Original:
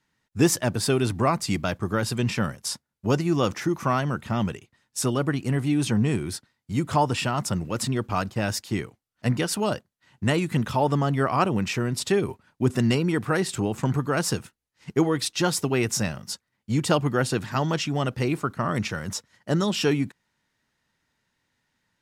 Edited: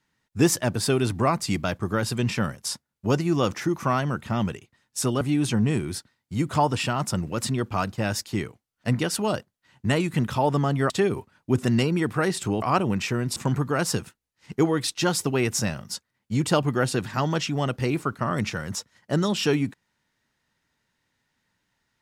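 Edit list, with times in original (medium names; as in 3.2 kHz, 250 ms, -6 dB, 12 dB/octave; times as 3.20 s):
5.21–5.59 s: delete
11.28–12.02 s: move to 13.74 s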